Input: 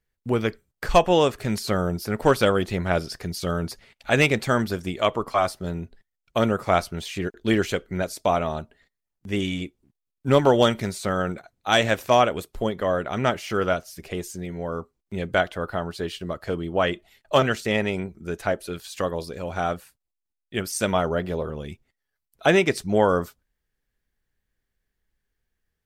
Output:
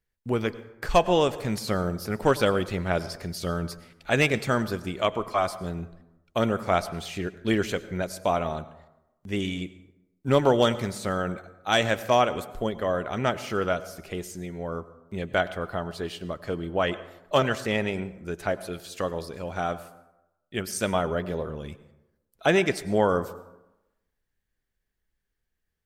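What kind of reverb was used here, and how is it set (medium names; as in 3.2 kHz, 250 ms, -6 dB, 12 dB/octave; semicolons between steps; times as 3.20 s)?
plate-style reverb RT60 0.95 s, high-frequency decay 0.5×, pre-delay 85 ms, DRR 15.5 dB; trim -3 dB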